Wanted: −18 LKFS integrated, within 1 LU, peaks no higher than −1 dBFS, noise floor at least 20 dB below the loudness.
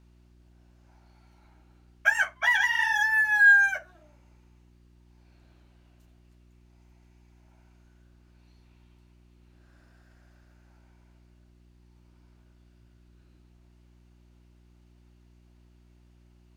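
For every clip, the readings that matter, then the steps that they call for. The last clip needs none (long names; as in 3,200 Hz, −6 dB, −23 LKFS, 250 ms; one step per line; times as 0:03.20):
mains hum 60 Hz; hum harmonics up to 360 Hz; level of the hum −56 dBFS; integrated loudness −21.5 LKFS; sample peak −10.0 dBFS; target loudness −18.0 LKFS
→ hum removal 60 Hz, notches 6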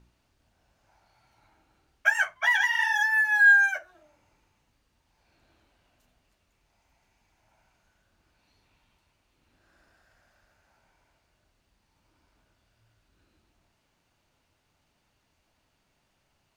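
mains hum none found; integrated loudness −21.5 LKFS; sample peak −10.0 dBFS; target loudness −18.0 LKFS
→ level +3.5 dB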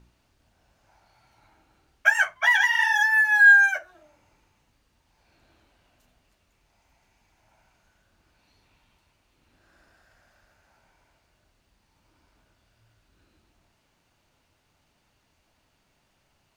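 integrated loudness −18.0 LKFS; sample peak −6.5 dBFS; background noise floor −70 dBFS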